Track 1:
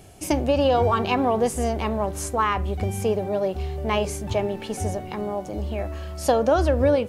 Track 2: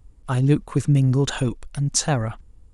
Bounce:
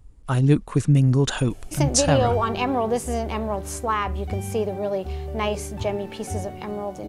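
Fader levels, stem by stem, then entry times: -1.5 dB, +0.5 dB; 1.50 s, 0.00 s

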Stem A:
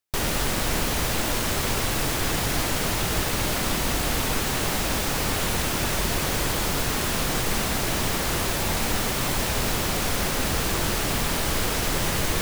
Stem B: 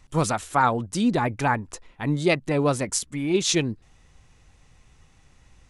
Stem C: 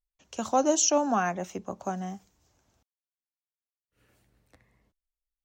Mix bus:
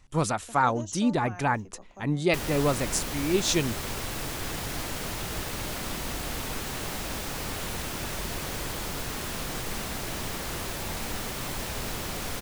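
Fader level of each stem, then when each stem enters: -8.5 dB, -3.0 dB, -16.0 dB; 2.20 s, 0.00 s, 0.10 s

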